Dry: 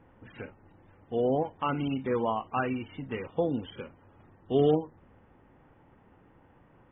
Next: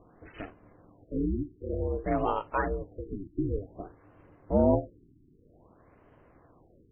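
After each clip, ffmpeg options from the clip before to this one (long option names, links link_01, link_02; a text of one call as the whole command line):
ffmpeg -i in.wav -af "aeval=exprs='val(0)*sin(2*PI*200*n/s)':channel_layout=same,afftfilt=real='re*lt(b*sr/1024,380*pow(3300/380,0.5+0.5*sin(2*PI*0.53*pts/sr)))':imag='im*lt(b*sr/1024,380*pow(3300/380,0.5+0.5*sin(2*PI*0.53*pts/sr)))':win_size=1024:overlap=0.75,volume=3.5dB" out.wav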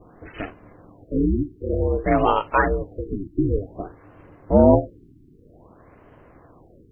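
ffmpeg -i in.wav -af "adynamicequalizer=threshold=0.00355:dfrequency=2700:dqfactor=0.84:tfrequency=2700:tqfactor=0.84:attack=5:release=100:ratio=0.375:range=3:mode=boostabove:tftype=bell,volume=9dB" out.wav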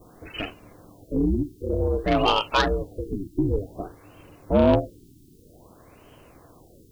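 ffmpeg -i in.wav -af "acontrast=67,aexciter=amount=7.7:drive=7.8:freq=2900,volume=-8dB" out.wav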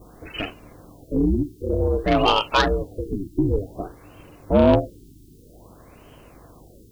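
ffmpeg -i in.wav -af "aeval=exprs='val(0)+0.00178*(sin(2*PI*50*n/s)+sin(2*PI*2*50*n/s)/2+sin(2*PI*3*50*n/s)/3+sin(2*PI*4*50*n/s)/4+sin(2*PI*5*50*n/s)/5)':channel_layout=same,volume=2.5dB" out.wav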